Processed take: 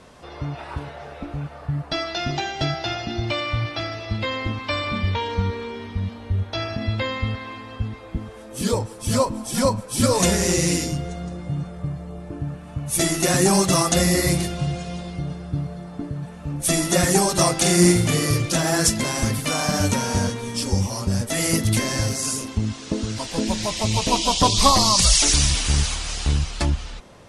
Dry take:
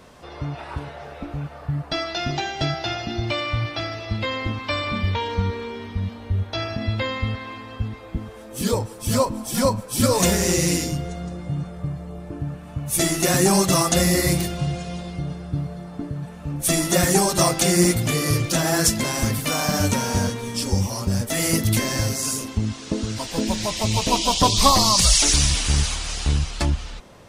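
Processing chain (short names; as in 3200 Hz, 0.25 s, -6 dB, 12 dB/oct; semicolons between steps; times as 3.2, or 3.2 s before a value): steep low-pass 12000 Hz 72 dB/oct; 17.58–18.26 flutter echo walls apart 7.8 m, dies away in 0.46 s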